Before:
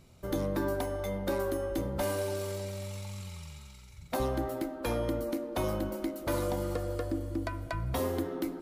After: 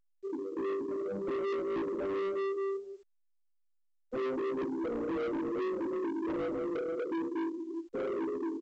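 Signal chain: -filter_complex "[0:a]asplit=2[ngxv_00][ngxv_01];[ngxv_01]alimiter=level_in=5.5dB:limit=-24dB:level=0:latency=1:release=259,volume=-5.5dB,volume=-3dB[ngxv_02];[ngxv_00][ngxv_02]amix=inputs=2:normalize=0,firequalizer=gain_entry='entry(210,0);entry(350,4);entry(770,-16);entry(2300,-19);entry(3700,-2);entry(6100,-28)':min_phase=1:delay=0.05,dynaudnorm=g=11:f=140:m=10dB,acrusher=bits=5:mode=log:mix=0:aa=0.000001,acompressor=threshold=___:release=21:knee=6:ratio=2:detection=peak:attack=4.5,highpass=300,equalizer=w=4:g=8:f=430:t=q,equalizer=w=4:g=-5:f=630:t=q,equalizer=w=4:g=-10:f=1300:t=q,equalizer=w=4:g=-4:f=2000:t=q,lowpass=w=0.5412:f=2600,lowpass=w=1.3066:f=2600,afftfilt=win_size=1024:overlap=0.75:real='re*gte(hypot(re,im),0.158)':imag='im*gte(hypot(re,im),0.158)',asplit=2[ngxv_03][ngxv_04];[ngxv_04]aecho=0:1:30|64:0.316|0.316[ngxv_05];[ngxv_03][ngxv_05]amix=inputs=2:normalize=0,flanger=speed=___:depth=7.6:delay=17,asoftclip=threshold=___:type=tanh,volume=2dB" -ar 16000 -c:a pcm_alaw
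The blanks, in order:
-25dB, 0.5, -33.5dB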